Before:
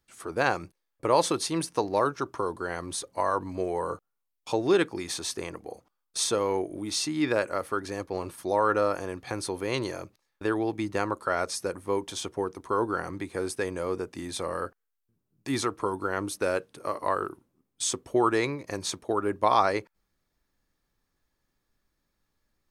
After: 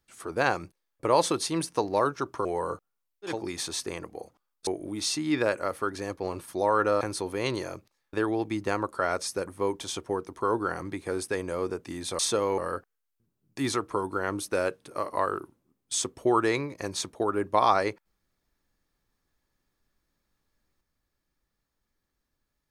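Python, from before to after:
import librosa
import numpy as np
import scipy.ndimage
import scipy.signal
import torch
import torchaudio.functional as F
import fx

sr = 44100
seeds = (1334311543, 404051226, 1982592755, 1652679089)

y = fx.edit(x, sr, fx.cut(start_s=2.45, length_s=1.2),
    fx.cut(start_s=4.54, length_s=0.31, crossfade_s=0.24),
    fx.move(start_s=6.18, length_s=0.39, to_s=14.47),
    fx.cut(start_s=8.91, length_s=0.38), tone=tone)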